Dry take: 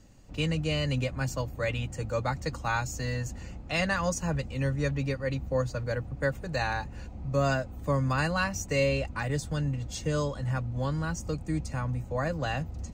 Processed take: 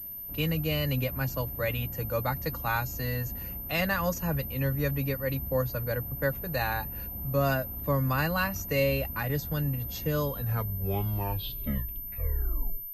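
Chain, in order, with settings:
turntable brake at the end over 2.69 s
switching amplifier with a slow clock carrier 13,000 Hz

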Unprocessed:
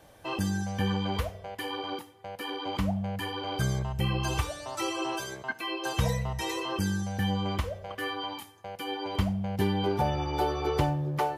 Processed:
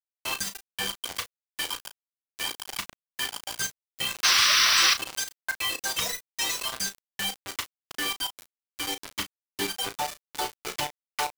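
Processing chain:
reverb reduction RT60 1.2 s
meter weighting curve ITU-R 468
reverb reduction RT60 0.67 s
0:04.23–0:04.94: sound drawn into the spectrogram noise 1,000–6,100 Hz −21 dBFS
0:07.40–0:09.66: parametric band 310 Hz +13 dB 0.43 octaves
bit reduction 5 bits
double-tracking delay 35 ms −10.5 dB

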